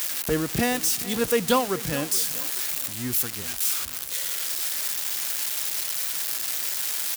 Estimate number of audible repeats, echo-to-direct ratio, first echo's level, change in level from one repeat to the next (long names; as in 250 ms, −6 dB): 2, −16.0 dB, −17.0 dB, −7.0 dB